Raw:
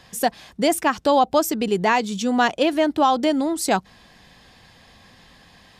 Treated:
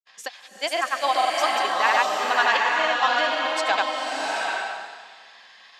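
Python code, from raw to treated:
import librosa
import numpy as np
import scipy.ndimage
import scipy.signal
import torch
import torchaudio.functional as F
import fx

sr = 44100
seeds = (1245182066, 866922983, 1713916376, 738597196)

y = scipy.signal.sosfilt(scipy.signal.butter(2, 1100.0, 'highpass', fs=sr, output='sos'), x)
y = fx.peak_eq(y, sr, hz=9700.0, db=-6.0, octaves=0.43)
y = fx.granulator(y, sr, seeds[0], grain_ms=100.0, per_s=20.0, spray_ms=100.0, spread_st=0)
y = fx.air_absorb(y, sr, metres=71.0)
y = fx.rev_bloom(y, sr, seeds[1], attack_ms=780, drr_db=-1.5)
y = y * 10.0 ** (3.0 / 20.0)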